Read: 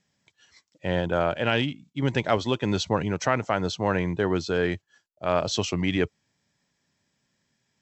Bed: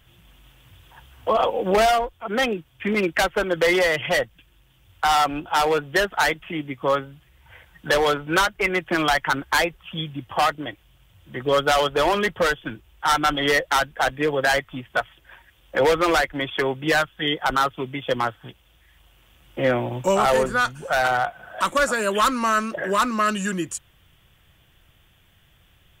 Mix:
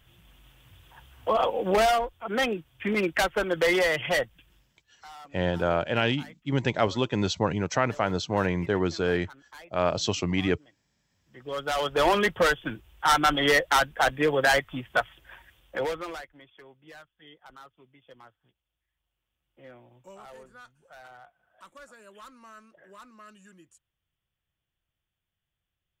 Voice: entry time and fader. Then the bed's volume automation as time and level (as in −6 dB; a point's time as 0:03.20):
4.50 s, −1.0 dB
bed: 0:04.56 −4 dB
0:04.93 −27.5 dB
0:10.96 −27.5 dB
0:12.06 −1.5 dB
0:15.50 −1.5 dB
0:16.50 −28.5 dB